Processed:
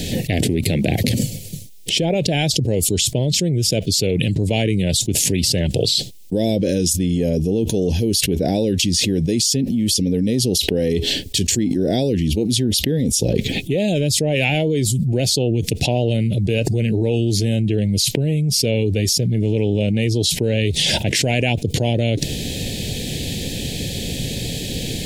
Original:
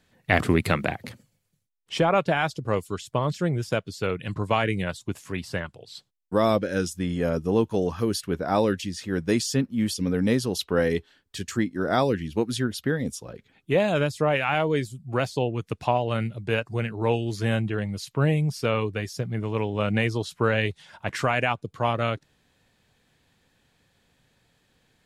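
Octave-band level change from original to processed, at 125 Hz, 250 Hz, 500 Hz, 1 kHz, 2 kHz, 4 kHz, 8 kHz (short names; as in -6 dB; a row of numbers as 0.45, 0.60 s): +9.5, +8.0, +4.5, -5.0, +1.5, +15.0, +18.5 dB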